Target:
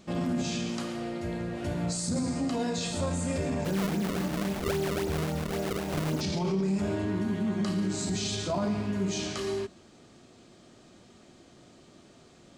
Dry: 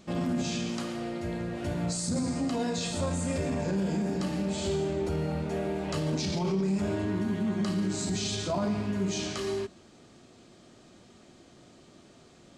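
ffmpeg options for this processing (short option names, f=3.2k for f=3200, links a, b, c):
-filter_complex "[0:a]asplit=3[a][b][c];[a]afade=t=out:st=3.64:d=0.02[d];[b]acrusher=samples=31:mix=1:aa=0.000001:lfo=1:lforange=49.6:lforate=3.7,afade=t=in:st=3.64:d=0.02,afade=t=out:st=6.2:d=0.02[e];[c]afade=t=in:st=6.2:d=0.02[f];[d][e][f]amix=inputs=3:normalize=0"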